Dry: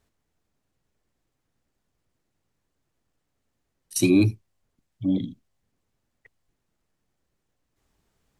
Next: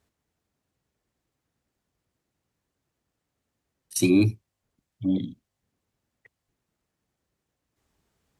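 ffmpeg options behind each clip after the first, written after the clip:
-af "highpass=46,volume=-1dB"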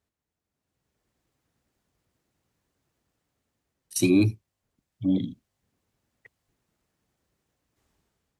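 -af "dynaudnorm=f=220:g=7:m=12dB,volume=-8.5dB"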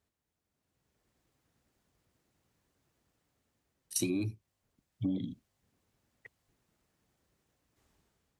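-af "acompressor=threshold=-29dB:ratio=16"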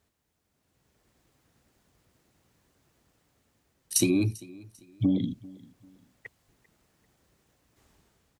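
-af "aecho=1:1:394|788:0.0794|0.0254,volume=8.5dB"

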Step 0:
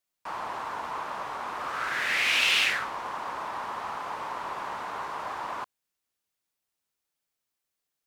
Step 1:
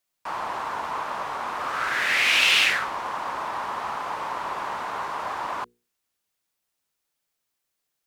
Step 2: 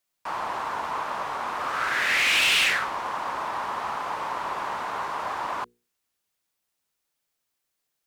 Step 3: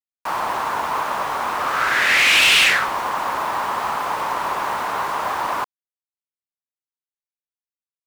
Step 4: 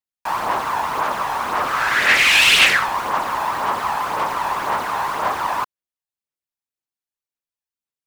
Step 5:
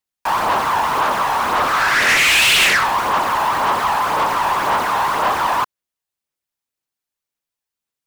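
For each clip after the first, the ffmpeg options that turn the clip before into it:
-af "bandreject=f=60:t=h:w=6,bandreject=f=120:t=h:w=6,bandreject=f=180:t=h:w=6,bandreject=f=240:t=h:w=6,bandreject=f=300:t=h:w=6,bandreject=f=360:t=h:w=6,bandreject=f=420:t=h:w=6,bandreject=f=480:t=h:w=6,volume=4.5dB"
-af "volume=17dB,asoftclip=hard,volume=-17dB"
-af "acrusher=bits=6:mix=0:aa=0.5,volume=7dB"
-af "aphaser=in_gain=1:out_gain=1:delay=1.2:decay=0.37:speed=1.9:type=sinusoidal"
-af "asoftclip=type=tanh:threshold=-17.5dB,volume=6.5dB"

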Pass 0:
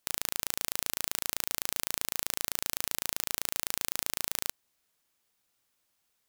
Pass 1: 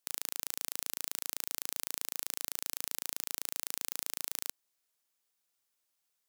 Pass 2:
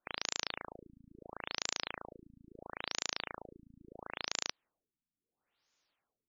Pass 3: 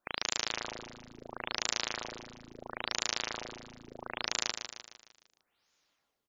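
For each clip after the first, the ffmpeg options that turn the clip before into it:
-af "bass=f=250:g=-7,treble=f=4k:g=4,volume=-8dB"
-af "afftfilt=real='re*lt(b*sr/1024,270*pow(7300/270,0.5+0.5*sin(2*PI*0.74*pts/sr)))':imag='im*lt(b*sr/1024,270*pow(7300/270,0.5+0.5*sin(2*PI*0.74*pts/sr)))':win_size=1024:overlap=0.75,volume=7.5dB"
-af "aecho=1:1:152|304|456|608|760|912:0.398|0.191|0.0917|0.044|0.0211|0.0101,volume=4dB"

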